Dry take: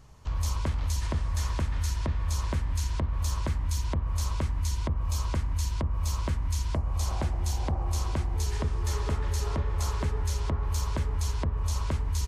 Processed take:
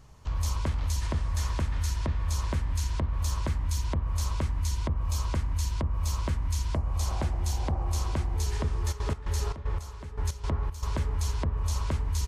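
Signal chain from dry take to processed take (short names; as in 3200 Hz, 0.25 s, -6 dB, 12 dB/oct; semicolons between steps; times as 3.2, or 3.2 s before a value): 8.91–10.86 step gate "x.x...x.x" 115 bpm -12 dB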